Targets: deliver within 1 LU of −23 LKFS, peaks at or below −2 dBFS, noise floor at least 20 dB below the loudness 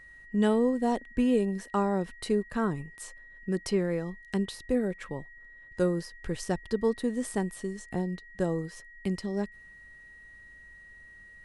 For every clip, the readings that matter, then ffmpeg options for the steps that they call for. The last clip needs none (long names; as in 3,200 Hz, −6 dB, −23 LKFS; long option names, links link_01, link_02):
interfering tone 1,900 Hz; level of the tone −49 dBFS; integrated loudness −30.5 LKFS; sample peak −13.0 dBFS; target loudness −23.0 LKFS
→ -af "bandreject=frequency=1900:width=30"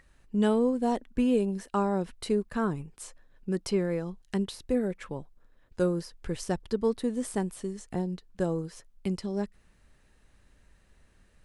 interfering tone none found; integrated loudness −30.5 LKFS; sample peak −13.0 dBFS; target loudness −23.0 LKFS
→ -af "volume=7.5dB"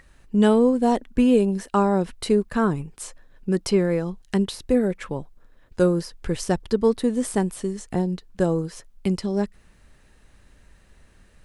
integrated loudness −23.0 LKFS; sample peak −5.5 dBFS; background noise floor −56 dBFS